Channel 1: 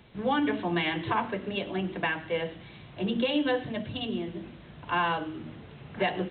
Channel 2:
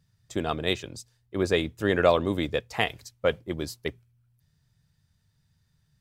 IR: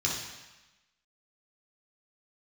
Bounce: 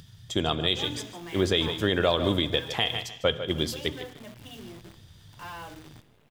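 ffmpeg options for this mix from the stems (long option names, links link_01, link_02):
-filter_complex "[0:a]lowshelf=frequency=180:gain=-4,acrusher=bits=7:dc=4:mix=0:aa=0.000001,asoftclip=type=hard:threshold=-26.5dB,adelay=500,volume=-10.5dB[link_01];[1:a]equalizer=frequency=3300:width_type=o:width=0.23:gain=14,acompressor=mode=upward:threshold=-42dB:ratio=2.5,volume=2dB,asplit=3[link_02][link_03][link_04];[link_03]volume=-21dB[link_05];[link_04]volume=-14dB[link_06];[2:a]atrim=start_sample=2205[link_07];[link_05][link_07]afir=irnorm=-1:irlink=0[link_08];[link_06]aecho=0:1:150|300|450|600:1|0.23|0.0529|0.0122[link_09];[link_01][link_02][link_08][link_09]amix=inputs=4:normalize=0,alimiter=limit=-11dB:level=0:latency=1:release=114"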